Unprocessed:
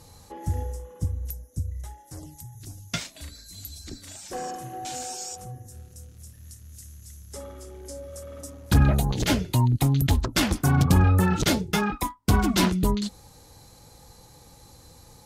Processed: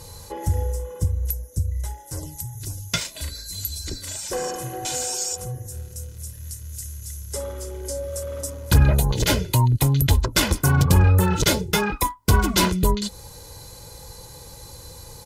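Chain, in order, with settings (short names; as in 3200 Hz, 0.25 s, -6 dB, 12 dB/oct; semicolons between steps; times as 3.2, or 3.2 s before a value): high shelf 7800 Hz +6 dB; comb 2 ms, depth 48%; in parallel at +2 dB: compressor, threshold -31 dBFS, peak gain reduction 17.5 dB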